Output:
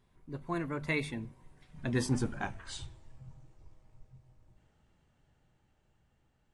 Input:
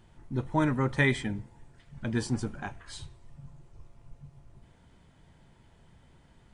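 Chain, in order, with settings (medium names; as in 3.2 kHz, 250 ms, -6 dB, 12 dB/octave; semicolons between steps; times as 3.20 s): Doppler pass-by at 2.39 s, 36 m/s, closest 23 m; hum notches 50/100/150/200/250 Hz; trim +1.5 dB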